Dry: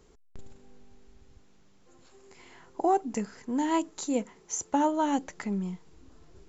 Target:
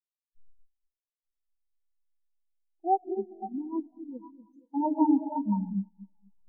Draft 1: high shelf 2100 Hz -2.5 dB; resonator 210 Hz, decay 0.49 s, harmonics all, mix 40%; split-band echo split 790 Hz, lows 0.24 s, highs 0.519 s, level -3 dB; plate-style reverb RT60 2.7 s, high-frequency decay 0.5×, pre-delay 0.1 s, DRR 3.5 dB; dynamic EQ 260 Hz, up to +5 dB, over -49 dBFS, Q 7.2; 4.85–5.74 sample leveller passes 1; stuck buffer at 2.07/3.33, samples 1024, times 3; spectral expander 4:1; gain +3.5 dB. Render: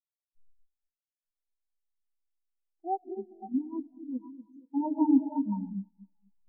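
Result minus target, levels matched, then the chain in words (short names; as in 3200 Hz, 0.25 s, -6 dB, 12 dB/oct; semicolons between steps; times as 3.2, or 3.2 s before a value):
125 Hz band -3.0 dB
high shelf 2100 Hz -2.5 dB; resonator 210 Hz, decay 0.49 s, harmonics all, mix 40%; split-band echo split 790 Hz, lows 0.24 s, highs 0.519 s, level -3 dB; plate-style reverb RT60 2.7 s, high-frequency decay 0.5×, pre-delay 0.1 s, DRR 3.5 dB; dynamic EQ 100 Hz, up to +5 dB, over -49 dBFS, Q 7.2; 4.85–5.74 sample leveller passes 1; stuck buffer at 2.07/3.33, samples 1024, times 3; spectral expander 4:1; gain +3.5 dB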